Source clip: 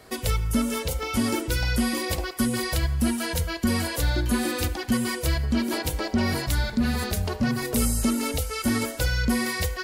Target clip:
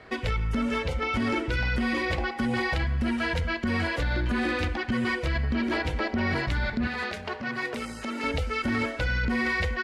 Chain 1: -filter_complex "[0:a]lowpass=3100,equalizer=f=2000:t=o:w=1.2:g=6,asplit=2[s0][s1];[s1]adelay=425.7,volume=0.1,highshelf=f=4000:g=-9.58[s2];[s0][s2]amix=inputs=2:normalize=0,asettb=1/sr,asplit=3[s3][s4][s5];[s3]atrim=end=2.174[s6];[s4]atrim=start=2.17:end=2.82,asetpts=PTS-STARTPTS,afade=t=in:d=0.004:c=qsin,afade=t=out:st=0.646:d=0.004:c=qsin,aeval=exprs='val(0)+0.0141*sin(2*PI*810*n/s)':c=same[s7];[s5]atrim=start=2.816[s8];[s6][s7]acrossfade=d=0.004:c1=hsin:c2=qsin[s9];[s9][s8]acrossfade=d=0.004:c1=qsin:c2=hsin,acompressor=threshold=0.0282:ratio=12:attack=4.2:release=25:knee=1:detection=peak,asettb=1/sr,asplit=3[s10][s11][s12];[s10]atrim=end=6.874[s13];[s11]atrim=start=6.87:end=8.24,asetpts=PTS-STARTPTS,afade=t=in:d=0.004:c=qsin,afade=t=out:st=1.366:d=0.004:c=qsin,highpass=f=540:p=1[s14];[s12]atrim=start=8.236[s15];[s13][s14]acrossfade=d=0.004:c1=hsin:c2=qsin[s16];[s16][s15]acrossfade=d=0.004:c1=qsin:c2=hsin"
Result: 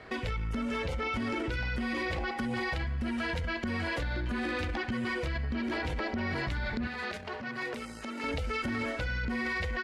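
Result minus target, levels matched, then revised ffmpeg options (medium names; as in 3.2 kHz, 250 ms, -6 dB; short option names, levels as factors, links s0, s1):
compression: peak gain reduction +6.5 dB
-filter_complex "[0:a]lowpass=3100,equalizer=f=2000:t=o:w=1.2:g=6,asplit=2[s0][s1];[s1]adelay=425.7,volume=0.1,highshelf=f=4000:g=-9.58[s2];[s0][s2]amix=inputs=2:normalize=0,asettb=1/sr,asplit=3[s3][s4][s5];[s3]atrim=end=2.174[s6];[s4]atrim=start=2.17:end=2.82,asetpts=PTS-STARTPTS,afade=t=in:d=0.004:c=qsin,afade=t=out:st=0.646:d=0.004:c=qsin,aeval=exprs='val(0)+0.0141*sin(2*PI*810*n/s)':c=same[s7];[s5]atrim=start=2.816[s8];[s6][s7]acrossfade=d=0.004:c1=hsin:c2=qsin[s9];[s9][s8]acrossfade=d=0.004:c1=qsin:c2=hsin,acompressor=threshold=0.0631:ratio=12:attack=4.2:release=25:knee=1:detection=peak,asettb=1/sr,asplit=3[s10][s11][s12];[s10]atrim=end=6.874[s13];[s11]atrim=start=6.87:end=8.24,asetpts=PTS-STARTPTS,afade=t=in:d=0.004:c=qsin,afade=t=out:st=1.366:d=0.004:c=qsin,highpass=f=540:p=1[s14];[s12]atrim=start=8.236[s15];[s13][s14]acrossfade=d=0.004:c1=hsin:c2=qsin[s16];[s16][s15]acrossfade=d=0.004:c1=qsin:c2=hsin"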